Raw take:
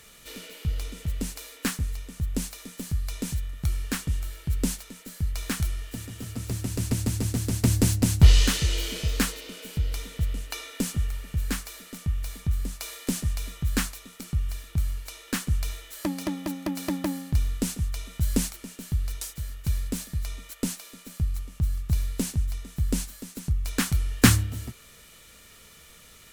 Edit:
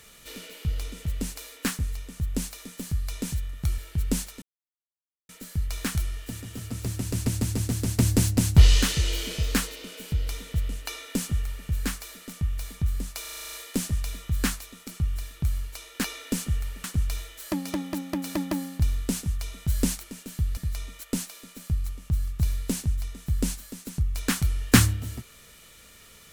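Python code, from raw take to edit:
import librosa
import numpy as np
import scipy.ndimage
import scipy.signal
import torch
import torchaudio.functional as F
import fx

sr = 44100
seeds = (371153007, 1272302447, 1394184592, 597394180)

y = fx.edit(x, sr, fx.cut(start_s=3.78, length_s=0.52),
    fx.insert_silence(at_s=4.94, length_s=0.87),
    fx.duplicate(start_s=10.52, length_s=0.8, to_s=15.37),
    fx.stutter(start_s=12.86, slice_s=0.04, count=9),
    fx.cut(start_s=19.1, length_s=0.97), tone=tone)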